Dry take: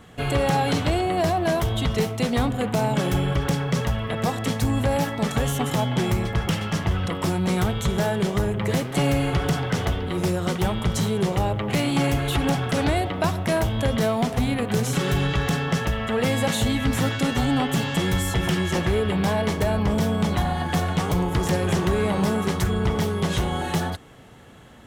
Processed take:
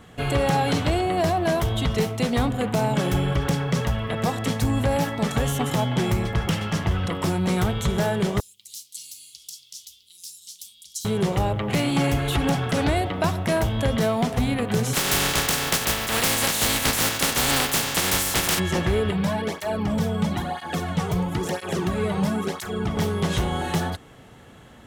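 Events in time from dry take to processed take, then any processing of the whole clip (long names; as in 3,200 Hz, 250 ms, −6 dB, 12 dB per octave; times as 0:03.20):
0:08.40–0:11.05: inverse Chebyshev high-pass filter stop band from 1,800 Hz, stop band 50 dB
0:14.93–0:18.58: compressing power law on the bin magnitudes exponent 0.32
0:19.11–0:22.97: through-zero flanger with one copy inverted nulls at 1 Hz, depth 3.8 ms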